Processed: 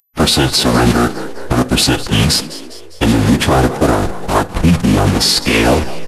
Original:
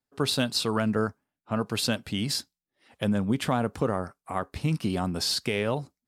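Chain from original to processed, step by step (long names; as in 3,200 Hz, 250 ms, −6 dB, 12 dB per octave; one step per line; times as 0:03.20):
hold until the input has moved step −30 dBFS
in parallel at +2 dB: downward compressor 8 to 1, threshold −40 dBFS, peak gain reduction 19 dB
on the sum: phase-vocoder pitch shift with formants kept −10.5 semitones
echo with shifted repeats 202 ms, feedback 51%, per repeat +84 Hz, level −17 dB
on a send at −15.5 dB: convolution reverb RT60 0.35 s, pre-delay 3 ms
on the sum: boost into a limiter +18 dB
level −1 dB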